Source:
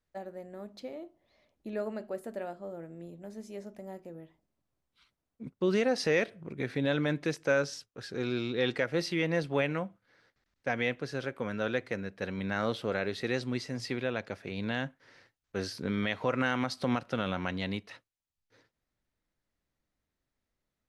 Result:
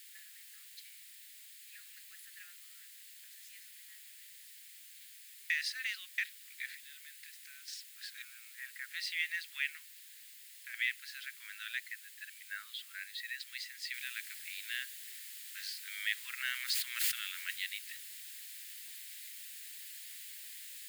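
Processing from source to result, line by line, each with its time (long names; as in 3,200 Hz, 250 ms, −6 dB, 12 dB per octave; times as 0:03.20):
0:00.63–0:02.08: guitar amp tone stack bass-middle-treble 10-0-10
0:05.50–0:06.18: reverse
0:06.75–0:07.68: downward compressor 4 to 1, threshold −45 dBFS
0:08.22–0:08.91: Bessel low-pass filter 1,200 Hz, order 6
0:09.69–0:10.74: downward compressor, threshold −34 dBFS
0:11.80–0:13.40: expanding power law on the bin magnitudes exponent 1.5
0:13.94: noise floor change −54 dB −48 dB
0:16.38–0:17.62: level that may fall only so fast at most 23 dB per second
whole clip: elliptic high-pass filter 1,800 Hz, stop band 70 dB; parametric band 5,800 Hz −8 dB 0.28 octaves; level +1 dB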